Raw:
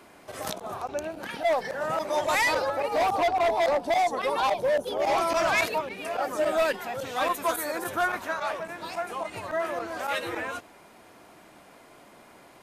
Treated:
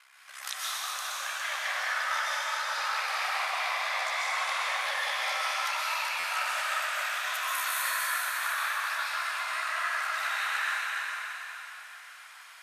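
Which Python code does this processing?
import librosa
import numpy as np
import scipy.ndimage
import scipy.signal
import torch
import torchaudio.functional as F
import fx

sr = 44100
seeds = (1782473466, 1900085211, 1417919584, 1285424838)

y = scipy.signal.sosfilt(scipy.signal.butter(4, 1300.0, 'highpass', fs=sr, output='sos'), x)
y = fx.high_shelf(y, sr, hz=11000.0, db=-6.5)
y = fx.over_compress(y, sr, threshold_db=-35.0, ratio=-0.5)
y = y * np.sin(2.0 * np.pi * 33.0 * np.arange(len(y)) / sr)
y = y + 10.0 ** (-7.5 / 20.0) * np.pad(y, (int(408 * sr / 1000.0), 0))[:len(y)]
y = fx.rev_plate(y, sr, seeds[0], rt60_s=3.7, hf_ratio=0.9, predelay_ms=110, drr_db=-8.0)
y = fx.buffer_glitch(y, sr, at_s=(6.19,), block=512, repeats=3)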